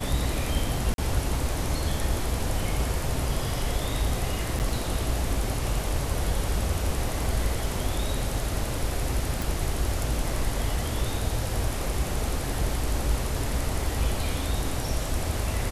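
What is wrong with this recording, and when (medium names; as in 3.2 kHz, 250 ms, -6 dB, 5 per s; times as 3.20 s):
0.94–0.98 s: dropout 42 ms
4.59–4.60 s: dropout 9 ms
9.42 s: pop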